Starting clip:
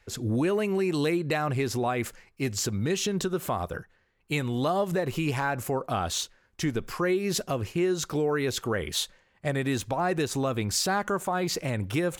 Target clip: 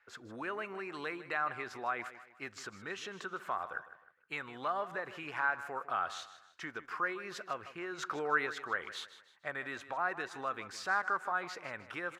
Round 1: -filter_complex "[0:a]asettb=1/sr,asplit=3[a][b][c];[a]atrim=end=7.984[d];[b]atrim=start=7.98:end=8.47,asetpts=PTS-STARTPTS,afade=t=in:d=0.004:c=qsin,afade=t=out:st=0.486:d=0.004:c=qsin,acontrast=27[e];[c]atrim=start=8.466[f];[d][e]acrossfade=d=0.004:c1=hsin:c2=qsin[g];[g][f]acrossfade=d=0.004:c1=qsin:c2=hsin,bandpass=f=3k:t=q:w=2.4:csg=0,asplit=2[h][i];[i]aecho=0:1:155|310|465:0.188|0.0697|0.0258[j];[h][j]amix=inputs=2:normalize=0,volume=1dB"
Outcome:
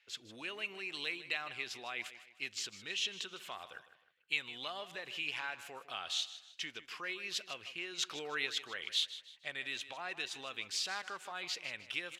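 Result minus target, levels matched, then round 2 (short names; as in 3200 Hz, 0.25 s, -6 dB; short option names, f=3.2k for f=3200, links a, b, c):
4000 Hz band +13.0 dB
-filter_complex "[0:a]asettb=1/sr,asplit=3[a][b][c];[a]atrim=end=7.984[d];[b]atrim=start=7.98:end=8.47,asetpts=PTS-STARTPTS,afade=t=in:d=0.004:c=qsin,afade=t=out:st=0.486:d=0.004:c=qsin,acontrast=27[e];[c]atrim=start=8.466[f];[d][e]acrossfade=d=0.004:c1=hsin:c2=qsin[g];[g][f]acrossfade=d=0.004:c1=qsin:c2=hsin,bandpass=f=1.4k:t=q:w=2.4:csg=0,asplit=2[h][i];[i]aecho=0:1:155|310|465:0.188|0.0697|0.0258[j];[h][j]amix=inputs=2:normalize=0,volume=1dB"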